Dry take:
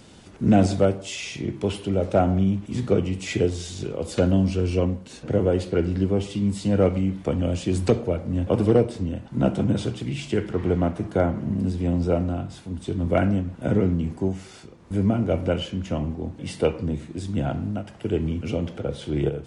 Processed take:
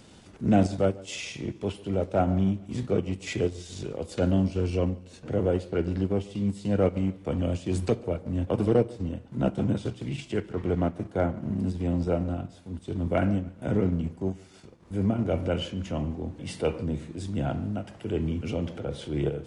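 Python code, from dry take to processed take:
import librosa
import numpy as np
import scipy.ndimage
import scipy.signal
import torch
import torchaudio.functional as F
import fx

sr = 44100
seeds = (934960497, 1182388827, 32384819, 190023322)

y = fx.transient(x, sr, attack_db=-5, sustain_db=fx.steps((0.0, -9.0), (15.24, 0.0)))
y = fx.echo_feedback(y, sr, ms=144, feedback_pct=45, wet_db=-23)
y = y * 10.0 ** (-2.5 / 20.0)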